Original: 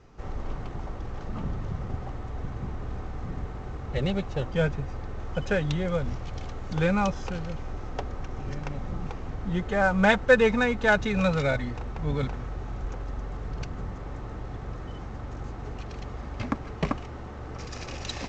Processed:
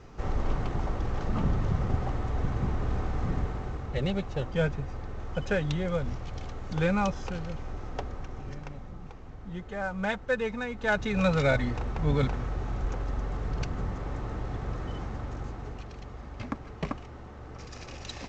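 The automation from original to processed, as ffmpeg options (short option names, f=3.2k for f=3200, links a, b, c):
-af "volume=17.5dB,afade=t=out:st=3.31:d=0.65:silence=0.446684,afade=t=out:st=8.01:d=0.92:silence=0.398107,afade=t=in:st=10.69:d=0.95:silence=0.237137,afade=t=out:st=15:d=0.95:silence=0.398107"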